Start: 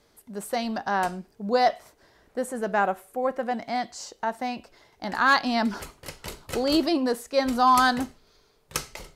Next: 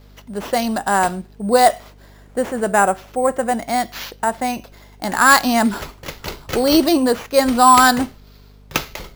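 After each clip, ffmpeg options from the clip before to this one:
-af "acrusher=samples=5:mix=1:aa=0.000001,aeval=exprs='val(0)+0.00224*(sin(2*PI*50*n/s)+sin(2*PI*2*50*n/s)/2+sin(2*PI*3*50*n/s)/3+sin(2*PI*4*50*n/s)/4+sin(2*PI*5*50*n/s)/5)':c=same,volume=2.66"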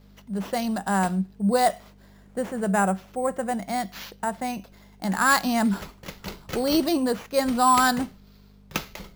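-af "equalizer=f=190:t=o:w=0.25:g=14.5,volume=0.376"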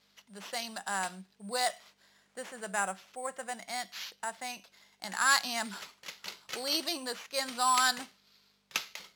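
-af "bandpass=f=4500:t=q:w=0.57:csg=0"

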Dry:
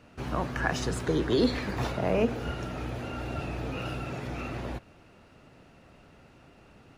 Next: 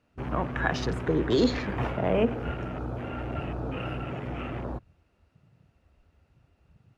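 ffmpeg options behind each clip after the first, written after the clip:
-af "afwtdn=0.00891,volume=1.19"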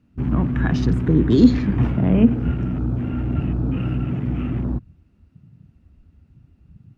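-af "lowshelf=f=360:t=q:w=1.5:g=12.5,volume=0.891"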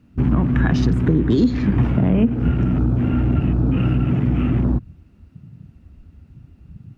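-af "acompressor=threshold=0.1:ratio=6,volume=2.24"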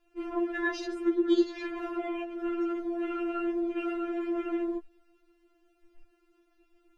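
-af "afftfilt=real='re*4*eq(mod(b,16),0)':imag='im*4*eq(mod(b,16),0)':win_size=2048:overlap=0.75,volume=0.631"

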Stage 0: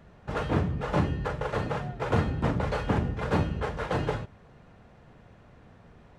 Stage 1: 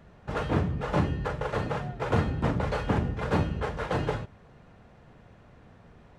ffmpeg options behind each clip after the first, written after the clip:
-af anull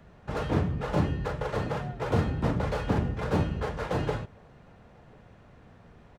-filter_complex "[0:a]acrossover=split=510|740[s0][s1][s2];[s1]aecho=1:1:1043:0.075[s3];[s2]volume=59.6,asoftclip=hard,volume=0.0168[s4];[s0][s3][s4]amix=inputs=3:normalize=0"

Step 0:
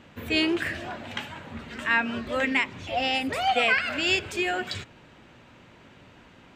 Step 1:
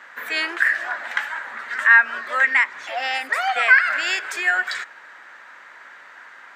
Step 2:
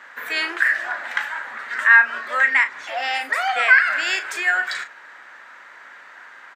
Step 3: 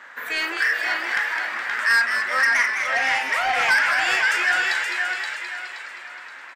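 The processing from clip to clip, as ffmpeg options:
-filter_complex "[0:a]highshelf=f=2200:t=q:w=3:g=-7,asplit=2[s0][s1];[s1]acompressor=threshold=0.0251:ratio=6,volume=1.19[s2];[s0][s2]amix=inputs=2:normalize=0,highpass=1300,volume=2.24"
-filter_complex "[0:a]asplit=2[s0][s1];[s1]adelay=37,volume=0.316[s2];[s0][s2]amix=inputs=2:normalize=0"
-filter_complex "[0:a]asplit=2[s0][s1];[s1]aecho=0:1:524|1048|1572|2096:0.501|0.17|0.0579|0.0197[s2];[s0][s2]amix=inputs=2:normalize=0,asoftclip=type=tanh:threshold=0.188,asplit=2[s3][s4];[s4]asplit=8[s5][s6][s7][s8][s9][s10][s11][s12];[s5]adelay=209,afreqshift=130,volume=0.447[s13];[s6]adelay=418,afreqshift=260,volume=0.263[s14];[s7]adelay=627,afreqshift=390,volume=0.155[s15];[s8]adelay=836,afreqshift=520,volume=0.0923[s16];[s9]adelay=1045,afreqshift=650,volume=0.0543[s17];[s10]adelay=1254,afreqshift=780,volume=0.032[s18];[s11]adelay=1463,afreqshift=910,volume=0.0188[s19];[s12]adelay=1672,afreqshift=1040,volume=0.0111[s20];[s13][s14][s15][s16][s17][s18][s19][s20]amix=inputs=8:normalize=0[s21];[s3][s21]amix=inputs=2:normalize=0"

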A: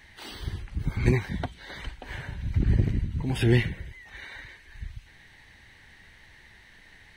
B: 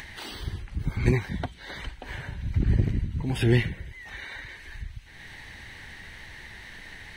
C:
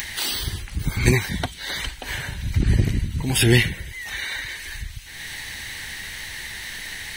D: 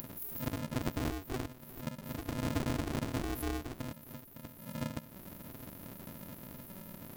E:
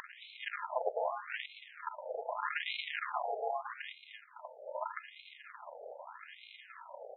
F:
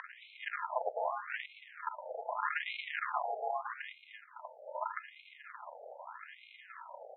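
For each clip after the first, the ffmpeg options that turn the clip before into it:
-af "acompressor=mode=upward:threshold=0.0224:ratio=2.5"
-af "crystalizer=i=5.5:c=0,volume=1.58"
-af "acompressor=threshold=0.0501:ratio=12,afftfilt=real='re*(1-between(b*sr/4096,240,11000))':imag='im*(1-between(b*sr/4096,240,11000))':win_size=4096:overlap=0.75,aeval=exprs='val(0)*sgn(sin(2*PI*190*n/s))':c=same,volume=0.596"
-af "aeval=exprs='if(lt(val(0),0),0.447*val(0),val(0))':c=same,aecho=1:1:225:0.237,afftfilt=real='re*between(b*sr/1024,590*pow(3000/590,0.5+0.5*sin(2*PI*0.81*pts/sr))/1.41,590*pow(3000/590,0.5+0.5*sin(2*PI*0.81*pts/sr))*1.41)':imag='im*between(b*sr/1024,590*pow(3000/590,0.5+0.5*sin(2*PI*0.81*pts/sr))/1.41,590*pow(3000/590,0.5+0.5*sin(2*PI*0.81*pts/sr))*1.41)':win_size=1024:overlap=0.75,volume=5.01"
-af "highpass=740,lowpass=2100,volume=1.5"

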